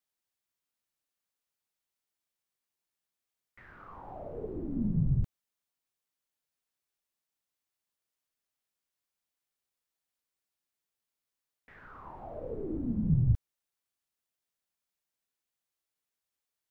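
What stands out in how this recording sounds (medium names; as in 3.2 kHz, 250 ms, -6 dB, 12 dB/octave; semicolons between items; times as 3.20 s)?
noise floor -89 dBFS; spectral tilt -9.5 dB/octave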